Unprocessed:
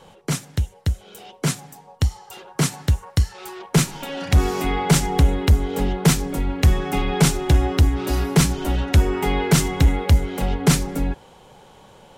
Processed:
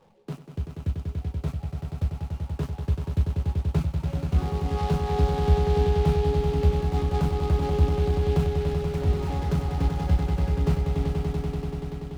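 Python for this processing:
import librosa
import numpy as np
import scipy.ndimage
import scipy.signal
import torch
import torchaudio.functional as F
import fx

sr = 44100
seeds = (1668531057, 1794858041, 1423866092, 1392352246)

p1 = scipy.ndimage.median_filter(x, 25, mode='constant')
p2 = fx.resonator_bank(p1, sr, root=37, chord='minor', decay_s=0.23)
p3 = fx.dereverb_blind(p2, sr, rt60_s=1.7)
p4 = fx.dispersion(p3, sr, late='lows', ms=117.0, hz=710.0, at=(8.74, 9.3))
p5 = p4 + fx.echo_swell(p4, sr, ms=96, loudest=5, wet_db=-7.0, dry=0)
y = fx.noise_mod_delay(p5, sr, seeds[0], noise_hz=2800.0, depth_ms=0.033)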